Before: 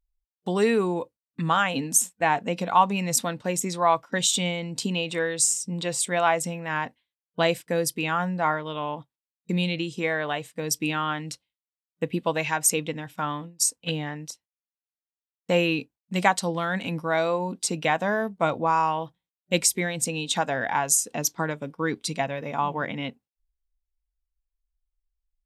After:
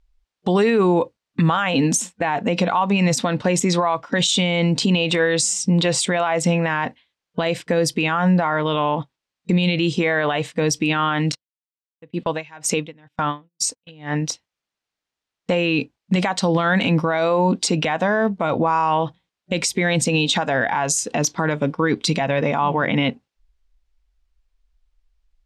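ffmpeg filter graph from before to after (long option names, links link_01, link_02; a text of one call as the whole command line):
ffmpeg -i in.wav -filter_complex "[0:a]asettb=1/sr,asplit=3[link_01][link_02][link_03];[link_01]atrim=end=11.324[link_04];[link_02]atrim=start=11.32:end=14.22,asetpts=PTS-STARTPTS,afade=type=in:duration=0.004:curve=qsin,afade=type=out:start_time=2.896:duration=0.004:curve=qsin,agate=range=-24dB:threshold=-40dB:ratio=16:release=100:detection=peak,aeval=exprs='val(0)*pow(10,-33*(0.5-0.5*cos(2*PI*2.1*n/s))/20)':channel_layout=same[link_05];[link_03]atrim=start=14.216[link_06];[link_04][link_05]acrossfade=duration=0.004:curve1=hsin:curve2=qsin[link_07];[link_07][link_06]acrossfade=duration=0.004:curve1=qsin:curve2=hsin,acompressor=threshold=-26dB:ratio=3,lowpass=5100,alimiter=level_in=25dB:limit=-1dB:release=50:level=0:latency=1,volume=-9dB" out.wav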